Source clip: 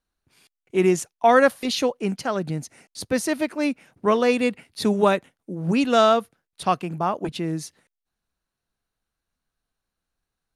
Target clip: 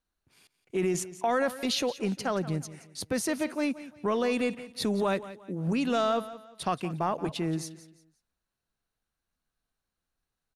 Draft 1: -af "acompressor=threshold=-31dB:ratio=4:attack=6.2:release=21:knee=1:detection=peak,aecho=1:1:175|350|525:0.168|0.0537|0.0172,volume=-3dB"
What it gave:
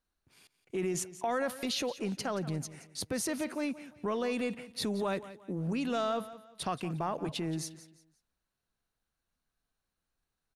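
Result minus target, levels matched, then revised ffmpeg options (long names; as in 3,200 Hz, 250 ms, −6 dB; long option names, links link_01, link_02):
downward compressor: peak gain reduction +5 dB
-af "acompressor=threshold=-24dB:ratio=4:attack=6.2:release=21:knee=1:detection=peak,aecho=1:1:175|350|525:0.168|0.0537|0.0172,volume=-3dB"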